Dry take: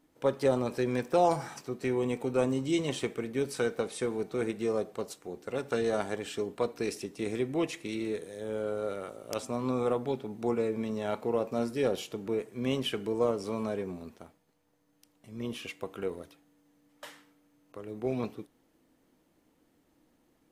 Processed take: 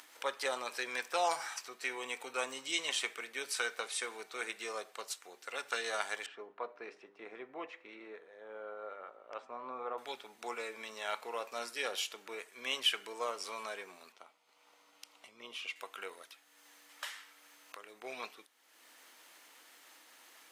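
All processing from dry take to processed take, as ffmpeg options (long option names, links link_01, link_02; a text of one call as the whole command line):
ffmpeg -i in.wav -filter_complex "[0:a]asettb=1/sr,asplit=3[link_01][link_02][link_03];[link_01]atrim=end=6.264[link_04];[link_02]atrim=start=6.26:end=9.98,asetpts=PTS-STARTPTS,afade=type=in:duration=0.004:curve=qsin,afade=type=out:start_time=3.716:duration=0.004:curve=qsin,lowpass=1100,bandreject=frequency=100.4:width_type=h:width=4,bandreject=frequency=200.8:width_type=h:width=4,bandreject=frequency=301.2:width_type=h:width=4,bandreject=frequency=401.6:width_type=h:width=4,bandreject=frequency=502:width_type=h:width=4,bandreject=frequency=602.4:width_type=h:width=4[link_05];[link_03]atrim=start=9.976[link_06];[link_04][link_05]acrossfade=duration=0.004:curve1=hsin:curve2=qsin[link_07];[link_07][link_06]acrossfade=duration=0.004:curve1=qsin:curve2=hsin,asettb=1/sr,asplit=3[link_08][link_09][link_10];[link_08]atrim=end=14.124[link_11];[link_09]atrim=start=14.12:end=15.76,asetpts=PTS-STARTPTS,afade=type=in:duration=0.004:curve=qsin,afade=type=out:start_time=1.636:duration=0.004:curve=qsin,lowpass=frequency=2400:poles=1,equalizer=frequency=1700:width_type=o:width=0.21:gain=-14.5[link_12];[link_10]atrim=start=15.756[link_13];[link_11][link_12]acrossfade=duration=0.004:curve1=hsin:curve2=qsin[link_14];[link_14][link_13]acrossfade=duration=0.004:curve1=qsin:curve2=hsin,acompressor=mode=upward:threshold=-40dB:ratio=2.5,highpass=1400,highshelf=frequency=11000:gain=-5,volume=5.5dB" out.wav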